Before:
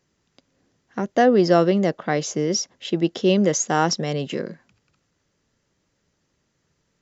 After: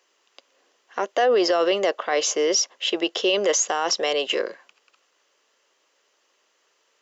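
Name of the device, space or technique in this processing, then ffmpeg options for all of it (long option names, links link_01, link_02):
laptop speaker: -af "highpass=frequency=430:width=0.5412,highpass=frequency=430:width=1.3066,equalizer=frequency=1100:width_type=o:width=0.25:gain=5.5,equalizer=frequency=2900:width_type=o:width=0.39:gain=7,alimiter=limit=-18.5dB:level=0:latency=1:release=24,volume=6dB"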